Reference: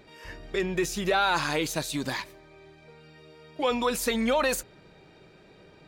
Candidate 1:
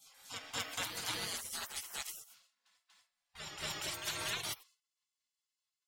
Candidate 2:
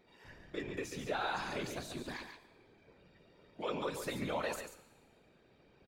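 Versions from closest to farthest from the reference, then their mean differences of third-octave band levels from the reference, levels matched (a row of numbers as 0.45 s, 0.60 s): 2, 1; 5.0 dB, 14.0 dB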